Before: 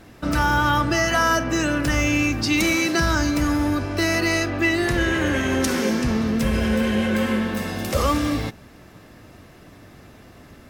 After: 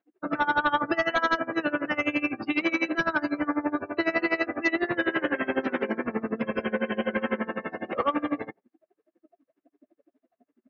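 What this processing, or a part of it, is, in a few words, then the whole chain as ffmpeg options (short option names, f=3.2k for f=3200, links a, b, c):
helicopter radio: -af "highpass=330,lowpass=2.5k,aeval=exprs='val(0)*pow(10,-20*(0.5-0.5*cos(2*PI*12*n/s))/20)':c=same,asoftclip=type=hard:threshold=-20dB,afftdn=nr=32:nf=-40,volume=3dB"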